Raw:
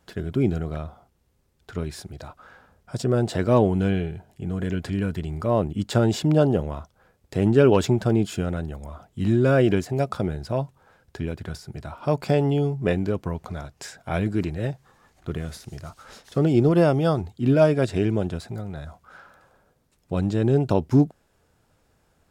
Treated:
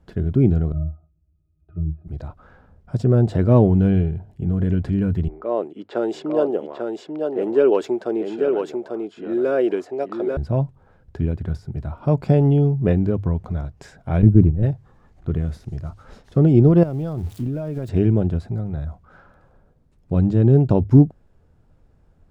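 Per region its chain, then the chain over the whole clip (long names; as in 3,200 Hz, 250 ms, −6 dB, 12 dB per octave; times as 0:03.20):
0:00.72–0:02.08: treble cut that deepens with the level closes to 370 Hz, closed at −24.5 dBFS + resonances in every octave D#, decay 0.14 s
0:05.28–0:10.37: Chebyshev high-pass filter 370 Hz, order 3 + low-pass that shuts in the quiet parts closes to 1,200 Hz, open at −21 dBFS + single-tap delay 843 ms −4.5 dB
0:14.22–0:14.63: downward expander −24 dBFS + low-pass filter 1,100 Hz 6 dB per octave + low-shelf EQ 300 Hz +10.5 dB
0:16.83–0:17.89: spike at every zero crossing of −23 dBFS + downward compressor 12 to 1, threshold −27 dBFS
whole clip: spectral tilt −3.5 dB per octave; mains-hum notches 50/100 Hz; level −2 dB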